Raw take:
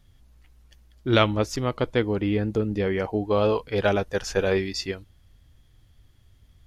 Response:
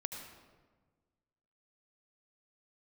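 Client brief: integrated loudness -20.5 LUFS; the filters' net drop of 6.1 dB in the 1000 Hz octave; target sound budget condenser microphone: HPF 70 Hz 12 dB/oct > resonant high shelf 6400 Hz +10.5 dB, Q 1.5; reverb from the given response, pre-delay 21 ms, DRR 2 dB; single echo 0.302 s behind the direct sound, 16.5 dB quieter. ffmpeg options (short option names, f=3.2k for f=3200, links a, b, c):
-filter_complex "[0:a]equalizer=f=1k:t=o:g=-8.5,aecho=1:1:302:0.15,asplit=2[a][b];[1:a]atrim=start_sample=2205,adelay=21[c];[b][c]afir=irnorm=-1:irlink=0,volume=-1.5dB[d];[a][d]amix=inputs=2:normalize=0,highpass=70,highshelf=f=6.4k:t=q:w=1.5:g=10.5,volume=3dB"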